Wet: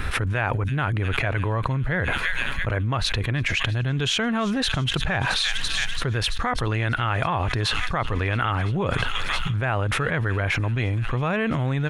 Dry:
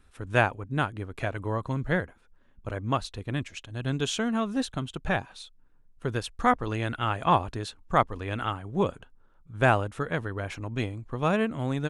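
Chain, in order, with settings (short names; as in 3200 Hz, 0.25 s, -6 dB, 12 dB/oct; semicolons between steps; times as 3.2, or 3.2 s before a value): graphic EQ 125/250/2000/8000 Hz +6/-4/+7/-8 dB; on a send: thin delay 0.336 s, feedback 77%, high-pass 3800 Hz, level -15 dB; on the sum: fast leveller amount 100%; gain -8 dB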